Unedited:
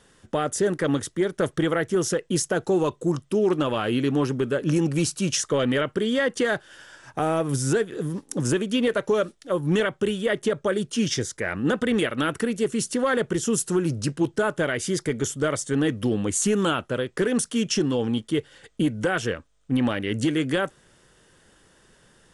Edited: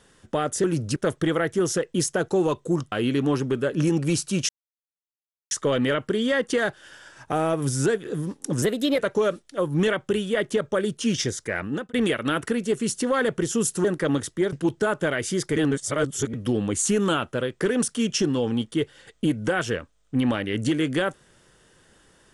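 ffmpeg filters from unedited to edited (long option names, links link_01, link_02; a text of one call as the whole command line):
ffmpeg -i in.wav -filter_complex "[0:a]asplit=12[link_01][link_02][link_03][link_04][link_05][link_06][link_07][link_08][link_09][link_10][link_11][link_12];[link_01]atrim=end=0.642[link_13];[link_02]atrim=start=13.768:end=14.092[link_14];[link_03]atrim=start=1.318:end=3.282[link_15];[link_04]atrim=start=3.808:end=5.38,asetpts=PTS-STARTPTS,afade=type=out:start_time=1.568:duration=0.004:curve=hsin,apad=pad_dur=1.02[link_16];[link_05]atrim=start=5.38:end=8.494,asetpts=PTS-STARTPTS,afade=type=in:duration=0.004:curve=hsin[link_17];[link_06]atrim=start=8.49:end=8.91,asetpts=PTS-STARTPTS,asetrate=50715,aresample=44100,atrim=end_sample=16106,asetpts=PTS-STARTPTS[link_18];[link_07]atrim=start=8.906:end=11.86,asetpts=PTS-STARTPTS,afade=type=out:start_time=2.604:duration=0.35[link_19];[link_08]atrim=start=11.86:end=13.772,asetpts=PTS-STARTPTS,afade=type=in:duration=0.004:curve=hsin[link_20];[link_09]atrim=start=0.638:end=1.322[link_21];[link_10]atrim=start=14.088:end=15.132[link_22];[link_11]atrim=start=15.128:end=15.902,asetpts=PTS-STARTPTS,areverse[link_23];[link_12]atrim=start=15.898[link_24];[link_13][link_14]acrossfade=duration=0.004:curve1=hsin:curve2=hsin[link_25];[link_25][link_15]acrossfade=duration=0.004:curve1=hsin:curve2=hsin[link_26];[link_16][link_17]concat=n=2:v=0:a=1[link_27];[link_26][link_27]acrossfade=duration=0.004:curve1=hsin:curve2=hsin[link_28];[link_28][link_18]acrossfade=duration=0.004:curve1=hsin:curve2=hsin[link_29];[link_19][link_20]concat=n=2:v=0:a=1[link_30];[link_29][link_30]acrossfade=duration=0.004:curve1=hsin:curve2=hsin[link_31];[link_31][link_21]acrossfade=duration=0.004:curve1=hsin:curve2=hsin[link_32];[link_32][link_22]acrossfade=duration=0.004:curve1=hsin:curve2=hsin[link_33];[link_33][link_23]acrossfade=duration=0.004:curve1=hsin:curve2=hsin[link_34];[link_34][link_24]acrossfade=duration=0.004:curve1=hsin:curve2=hsin" out.wav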